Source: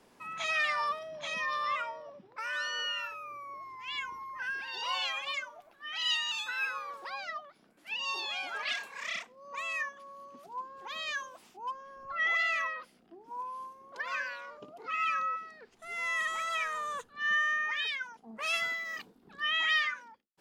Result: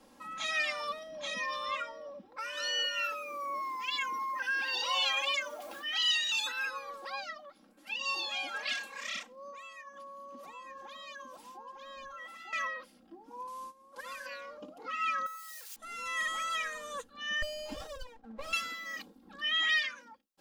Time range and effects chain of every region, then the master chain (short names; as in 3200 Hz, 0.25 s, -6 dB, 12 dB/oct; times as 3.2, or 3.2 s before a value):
2.57–6.52 HPF 250 Hz + requantised 12-bit, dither none + fast leveller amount 50%
9.5–12.53 compressor 4:1, threshold -48 dBFS + echo 0.902 s -4.5 dB
13.47–14.26 CVSD 64 kbps + gate -48 dBFS, range -10 dB + compressor 4:1, threshold -39 dBFS
15.26–15.76 switching spikes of -38 dBFS + HPF 1100 Hz + compressor 4:1, threshold -40 dBFS
17.42–18.53 band-pass 640 Hz, Q 0.53 + running maximum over 17 samples
whole clip: bell 2100 Hz -4.5 dB 0.88 oct; comb 3.7 ms, depth 96%; dynamic EQ 1000 Hz, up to -5 dB, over -46 dBFS, Q 1.1